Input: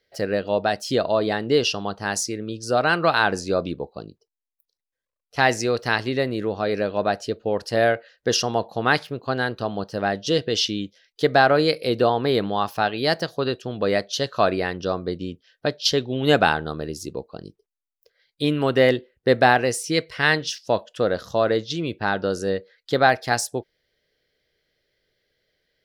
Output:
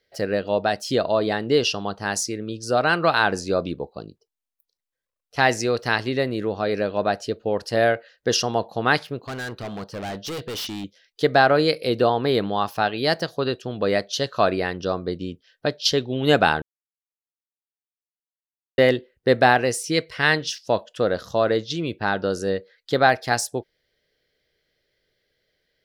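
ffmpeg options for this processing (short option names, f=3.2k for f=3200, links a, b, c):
-filter_complex "[0:a]asettb=1/sr,asplit=3[a][b][c];[a]atrim=end=9.244[d];[b]atrim=start=9.24:end=10.84,asetpts=PTS-STARTPTS,afade=t=in:d=0.004:c=qsin,afade=t=out:st=1.596:d=0.004:c=qsin,volume=28.5dB,asoftclip=hard,volume=-28.5dB[e];[c]atrim=start=10.836[f];[d][e]acrossfade=d=0.004:c1=hsin:c2=qsin[g];[g][f]acrossfade=d=0.004:c1=qsin:c2=hsin,asplit=3[h][i][j];[h]atrim=end=16.62,asetpts=PTS-STARTPTS,afade=t=out:st=16.616:d=0.004:c=hsin[k];[i]atrim=start=16.62:end=18.78,asetpts=PTS-STARTPTS,volume=0[l];[j]atrim=start=18.78,asetpts=PTS-STARTPTS,afade=t=in:d=0.004:c=hsin[m];[k][l][m]concat=n=3:v=0:a=1"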